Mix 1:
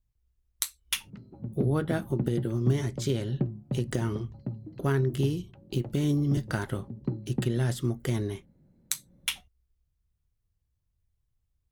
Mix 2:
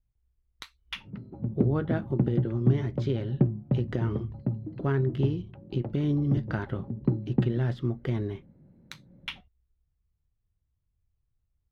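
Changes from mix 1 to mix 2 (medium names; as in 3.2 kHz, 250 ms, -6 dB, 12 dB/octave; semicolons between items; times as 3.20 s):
background +6.0 dB; master: add distance through air 300 m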